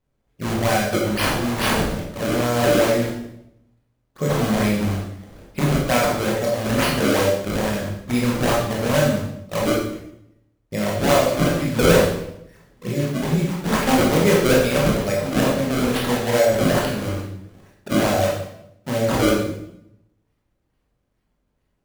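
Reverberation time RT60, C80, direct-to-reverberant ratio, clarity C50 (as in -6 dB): 0.80 s, 5.5 dB, -3.5 dB, 2.0 dB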